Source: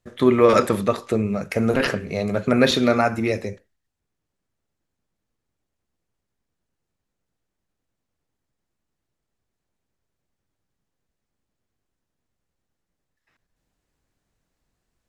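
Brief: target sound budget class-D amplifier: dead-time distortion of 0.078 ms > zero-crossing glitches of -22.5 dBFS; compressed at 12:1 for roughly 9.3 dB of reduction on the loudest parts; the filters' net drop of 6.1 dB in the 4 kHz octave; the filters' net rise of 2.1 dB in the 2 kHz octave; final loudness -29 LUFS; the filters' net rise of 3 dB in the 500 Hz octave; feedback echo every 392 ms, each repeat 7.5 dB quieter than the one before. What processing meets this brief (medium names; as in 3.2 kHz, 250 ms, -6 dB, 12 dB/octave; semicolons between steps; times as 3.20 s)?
peaking EQ 500 Hz +3.5 dB; peaking EQ 2 kHz +4.5 dB; peaking EQ 4 kHz -8.5 dB; compression 12:1, threshold -17 dBFS; feedback delay 392 ms, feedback 42%, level -7.5 dB; dead-time distortion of 0.078 ms; zero-crossing glitches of -22.5 dBFS; trim -3.5 dB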